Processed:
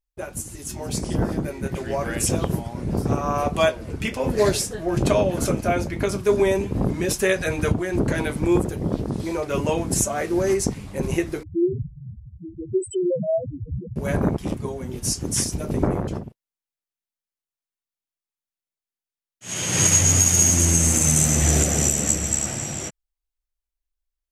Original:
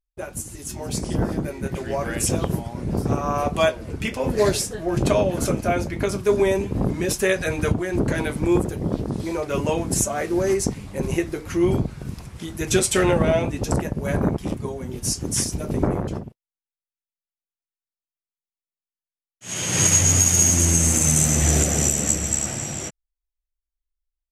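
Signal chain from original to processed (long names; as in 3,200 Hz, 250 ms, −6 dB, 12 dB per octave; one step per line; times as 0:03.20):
0:11.43–0:13.96: spectral peaks only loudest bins 2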